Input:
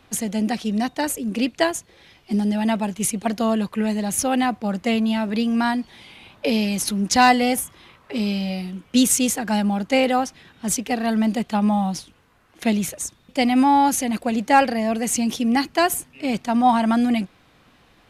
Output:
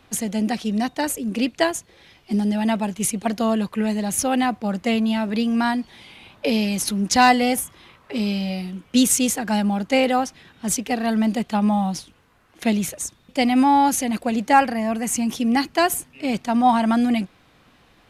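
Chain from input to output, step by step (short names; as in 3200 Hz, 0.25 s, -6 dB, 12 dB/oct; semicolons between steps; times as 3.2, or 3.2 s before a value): 14.53–15.36 graphic EQ 500/1000/4000 Hz -5/+3/-6 dB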